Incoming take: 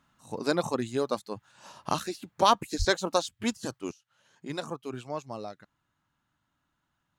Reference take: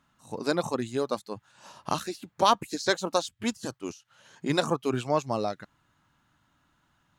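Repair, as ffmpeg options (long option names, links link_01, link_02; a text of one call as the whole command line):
ffmpeg -i in.wav -filter_complex "[0:a]asplit=3[link_01][link_02][link_03];[link_01]afade=type=out:start_time=2.78:duration=0.02[link_04];[link_02]highpass=frequency=140:width=0.5412,highpass=frequency=140:width=1.3066,afade=type=in:start_time=2.78:duration=0.02,afade=type=out:start_time=2.9:duration=0.02[link_05];[link_03]afade=type=in:start_time=2.9:duration=0.02[link_06];[link_04][link_05][link_06]amix=inputs=3:normalize=0,asetnsamples=nb_out_samples=441:pad=0,asendcmd='3.91 volume volume 9.5dB',volume=0dB" out.wav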